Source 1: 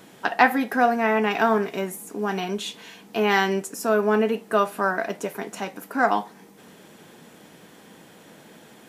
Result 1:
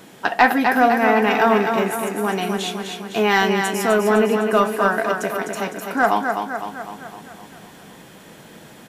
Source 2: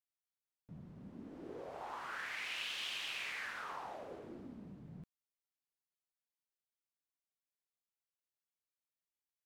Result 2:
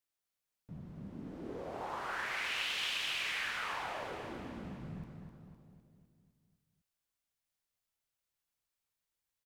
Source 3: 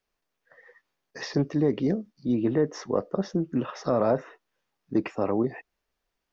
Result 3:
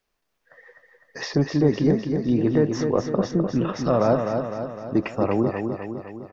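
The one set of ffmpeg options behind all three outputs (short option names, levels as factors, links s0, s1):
-af "asubboost=boost=2:cutoff=150,aecho=1:1:254|508|762|1016|1270|1524|1778:0.501|0.281|0.157|0.088|0.0493|0.0276|0.0155,acontrast=33,volume=0.891"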